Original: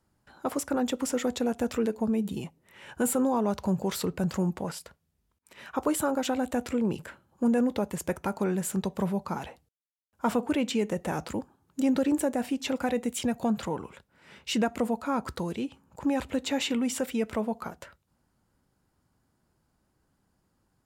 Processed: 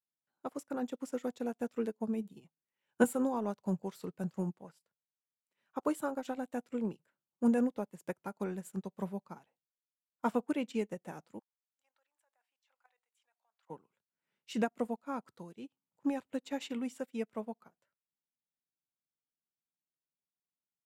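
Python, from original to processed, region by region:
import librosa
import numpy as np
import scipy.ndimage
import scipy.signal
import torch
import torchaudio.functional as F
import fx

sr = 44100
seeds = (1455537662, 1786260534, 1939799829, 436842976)

y = fx.chain(x, sr, fx.high_shelf(hz=12000.0, db=-9.0),
    fx.band_widen(depth_pct=40), at=(2.4, 3.04))
y = fx.chain(y, sr, fx.highpass(hz=850.0, slope=24),
    fx.high_shelf(hz=5100.0, db=-9.5),
    fx.level_steps(step_db=11), at=(11.39, 13.7))
y = scipy.signal.sosfilt(scipy.signal.butter(4, 120.0, 'highpass', fs=sr, output='sos'), y)
y = fx.upward_expand(y, sr, threshold_db=-43.0, expansion=2.5)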